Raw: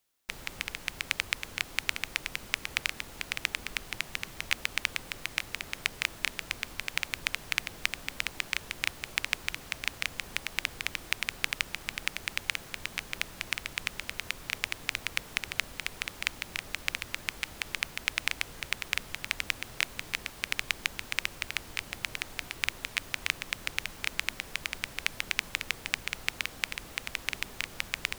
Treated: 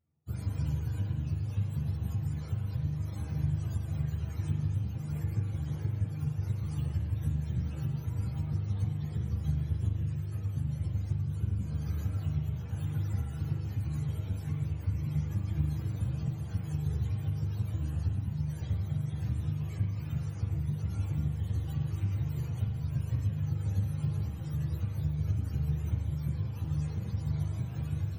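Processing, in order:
frequency axis turned over on the octave scale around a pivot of 510 Hz
downward compressor, threshold −30 dBFS, peak gain reduction 13 dB
0:09.50–0:11.60: rotating-speaker cabinet horn 8 Hz
spring reverb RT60 1.6 s, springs 40 ms, chirp 75 ms, DRR −0.5 dB
string-ensemble chorus
level +4.5 dB

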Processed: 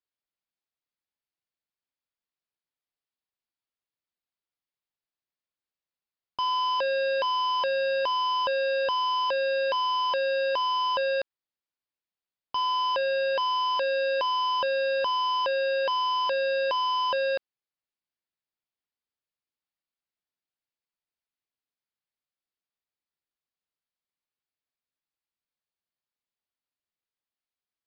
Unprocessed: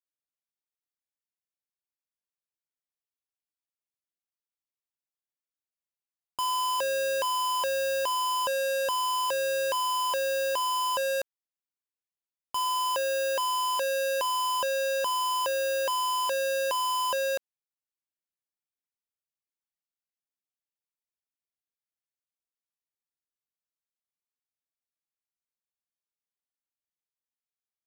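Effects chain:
downsampling to 11,025 Hz
level +2 dB

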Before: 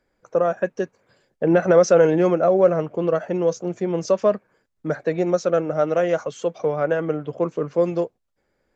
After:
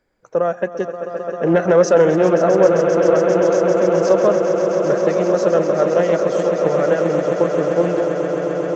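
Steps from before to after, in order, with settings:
echo that builds up and dies away 132 ms, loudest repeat 8, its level −10.5 dB
highs frequency-modulated by the lows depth 0.14 ms
level +1.5 dB

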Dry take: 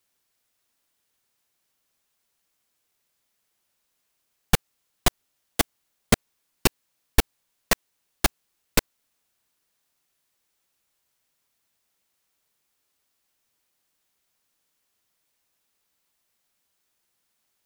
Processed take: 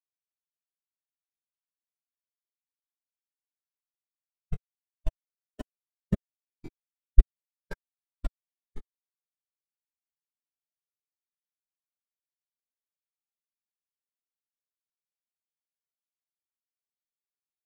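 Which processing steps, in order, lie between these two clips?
pitch glide at a constant tempo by −6.5 semitones starting unshifted
every bin expanded away from the loudest bin 2.5 to 1

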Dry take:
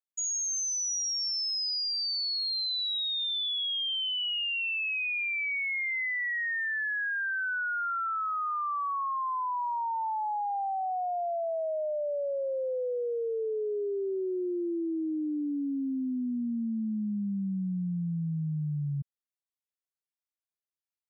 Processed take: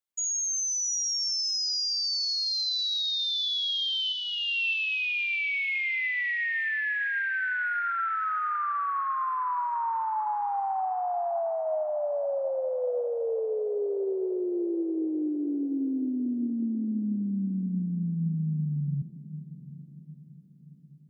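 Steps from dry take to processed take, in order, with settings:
0:04.12–0:04.73: comb filter 1.2 ms, depth 43%
feedback delay with all-pass diffusion 737 ms, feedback 47%, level −13.5 dB
convolution reverb RT60 2.4 s, pre-delay 8 ms, DRR 16.5 dB
level +2 dB

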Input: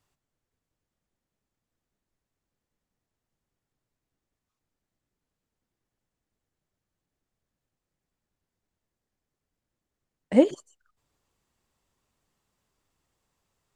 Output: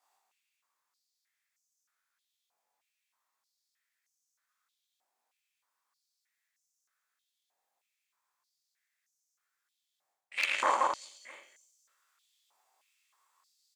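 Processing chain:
peak hold with a decay on every bin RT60 0.68 s
reverse bouncing-ball delay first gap 110 ms, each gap 1.25×, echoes 5
in parallel at −12 dB: gain into a clipping stage and back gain 9.5 dB
on the sum: high-shelf EQ 7,200 Hz +5 dB
double-tracking delay 21 ms −3 dB
harmonic generator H 5 −29 dB, 6 −9 dB, 7 −20 dB, 8 −10 dB, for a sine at −1 dBFS
reversed playback
downward compressor 16 to 1, threshold −20 dBFS, peak gain reduction 16.5 dB
reversed playback
notch filter 2,900 Hz, Q 15
single-tap delay 304 ms −16 dB
high-pass on a step sequencer 3.2 Hz 780–6,100 Hz

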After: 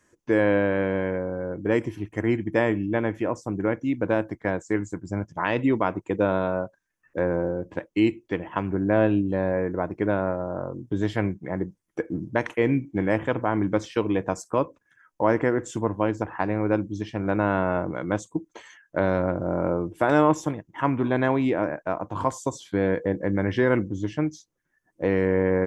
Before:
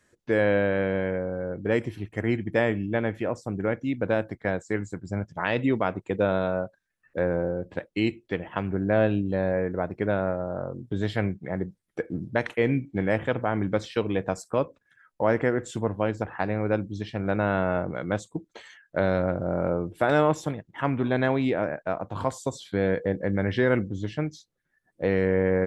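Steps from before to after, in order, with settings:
thirty-one-band graphic EQ 315 Hz +7 dB, 1,000 Hz +7 dB, 4,000 Hz −7 dB, 6,300 Hz +6 dB

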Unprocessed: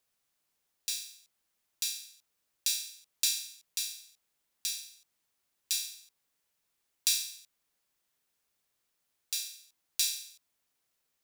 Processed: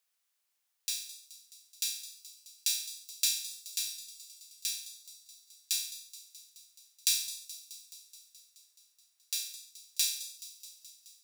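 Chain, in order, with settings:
high-pass filter 1,300 Hz 6 dB per octave
on a send: delay with a high-pass on its return 213 ms, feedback 72%, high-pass 3,900 Hz, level −14.5 dB

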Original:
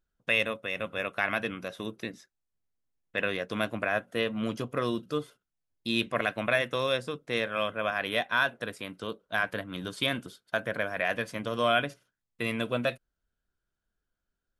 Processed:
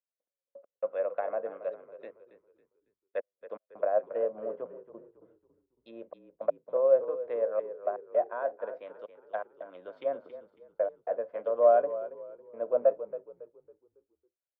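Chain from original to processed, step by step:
treble cut that deepens with the level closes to 940 Hz, closed at −27 dBFS
gate pattern "xxx...x..xxxxxxx" 164 BPM −60 dB
four-pole ladder band-pass 620 Hz, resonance 65%
echo with shifted repeats 276 ms, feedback 48%, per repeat −33 Hz, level −11 dB
multiband upward and downward expander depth 40%
level +8.5 dB

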